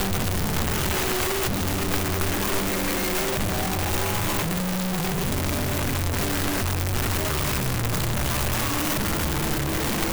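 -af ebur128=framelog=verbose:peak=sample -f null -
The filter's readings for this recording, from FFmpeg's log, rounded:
Integrated loudness:
  I:         -24.4 LUFS
  Threshold: -34.4 LUFS
Loudness range:
  LRA:         0.8 LU
  Threshold: -44.4 LUFS
  LRA low:   -24.8 LUFS
  LRA high:  -24.0 LUFS
Sample peak:
  Peak:      -15.2 dBFS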